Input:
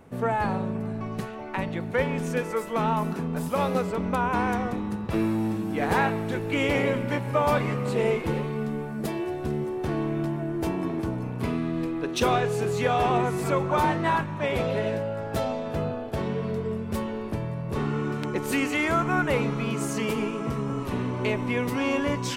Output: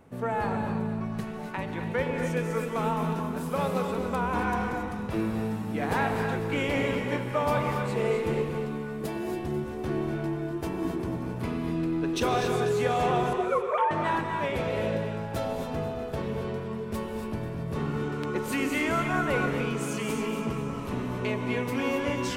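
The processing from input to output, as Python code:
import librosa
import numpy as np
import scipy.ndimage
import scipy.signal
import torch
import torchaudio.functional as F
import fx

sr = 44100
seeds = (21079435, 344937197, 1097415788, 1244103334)

y = fx.sine_speech(x, sr, at=(13.33, 13.91))
y = fx.echo_split(y, sr, split_hz=660.0, low_ms=110, high_ms=245, feedback_pct=52, wet_db=-12.0)
y = fx.rev_gated(y, sr, seeds[0], gate_ms=300, shape='rising', drr_db=4.0)
y = y * 10.0 ** (-4.0 / 20.0)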